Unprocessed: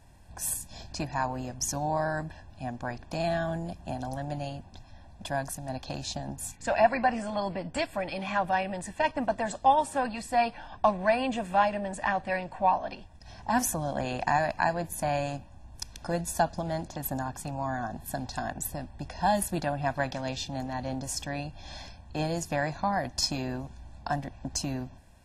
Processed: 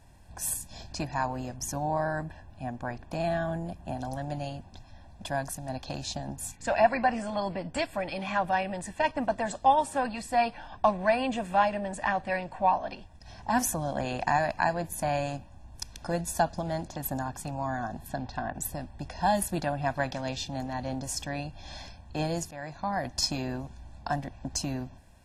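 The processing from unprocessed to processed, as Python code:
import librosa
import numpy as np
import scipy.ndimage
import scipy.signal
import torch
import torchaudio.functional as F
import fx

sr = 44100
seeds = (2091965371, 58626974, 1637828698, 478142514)

y = fx.peak_eq(x, sr, hz=5200.0, db=-6.0, octaves=1.5, at=(1.56, 3.97))
y = fx.lowpass(y, sr, hz=fx.line((18.07, 5100.0), (18.53, 2100.0)), slope=12, at=(18.07, 18.53), fade=0.02)
y = fx.edit(y, sr, fx.fade_in_from(start_s=22.51, length_s=0.58, floor_db=-16.5), tone=tone)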